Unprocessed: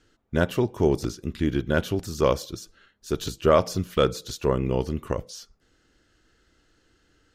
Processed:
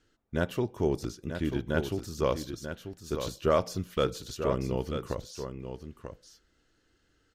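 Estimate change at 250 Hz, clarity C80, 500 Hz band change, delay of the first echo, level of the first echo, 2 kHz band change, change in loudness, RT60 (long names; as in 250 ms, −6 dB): −6.0 dB, no reverb audible, −6.0 dB, 939 ms, −8.5 dB, −6.0 dB, −6.5 dB, no reverb audible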